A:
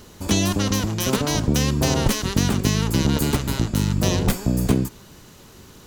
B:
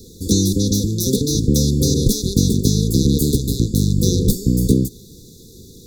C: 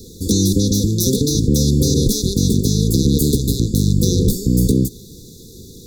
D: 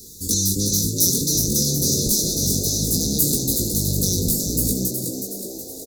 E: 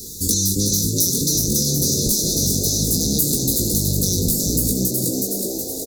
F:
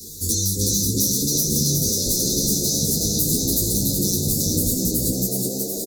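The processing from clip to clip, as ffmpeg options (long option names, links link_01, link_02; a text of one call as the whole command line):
ffmpeg -i in.wav -filter_complex "[0:a]afftfilt=real='re*(1-between(b*sr/4096,520,3400))':imag='im*(1-between(b*sr/4096,520,3400))':win_size=4096:overlap=0.75,acrossover=split=290|950|2700[link_01][link_02][link_03][link_04];[link_03]acompressor=threshold=-57dB:ratio=6[link_05];[link_01][link_02][link_05][link_04]amix=inputs=4:normalize=0,volume=4.5dB" out.wav
ffmpeg -i in.wav -af "alimiter=limit=-8.5dB:level=0:latency=1:release=66,volume=3dB" out.wav
ffmpeg -i in.wav -filter_complex "[0:a]flanger=delay=19:depth=3.1:speed=1.3,asplit=8[link_01][link_02][link_03][link_04][link_05][link_06][link_07][link_08];[link_02]adelay=369,afreqshift=68,volume=-6dB[link_09];[link_03]adelay=738,afreqshift=136,volume=-11.4dB[link_10];[link_04]adelay=1107,afreqshift=204,volume=-16.7dB[link_11];[link_05]adelay=1476,afreqshift=272,volume=-22.1dB[link_12];[link_06]adelay=1845,afreqshift=340,volume=-27.4dB[link_13];[link_07]adelay=2214,afreqshift=408,volume=-32.8dB[link_14];[link_08]adelay=2583,afreqshift=476,volume=-38.1dB[link_15];[link_01][link_09][link_10][link_11][link_12][link_13][link_14][link_15]amix=inputs=8:normalize=0,aexciter=amount=6.1:drive=2.6:freq=4400,volume=-7.5dB" out.wav
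ffmpeg -i in.wav -af "acompressor=threshold=-24dB:ratio=4,volume=7.5dB" out.wav
ffmpeg -i in.wav -filter_complex "[0:a]acrossover=split=260|1600|2900[link_01][link_02][link_03][link_04];[link_03]asoftclip=type=hard:threshold=-38dB[link_05];[link_01][link_02][link_05][link_04]amix=inputs=4:normalize=0,aecho=1:1:376:0.708,asplit=2[link_06][link_07];[link_07]adelay=10.5,afreqshift=0.68[link_08];[link_06][link_08]amix=inputs=2:normalize=1" out.wav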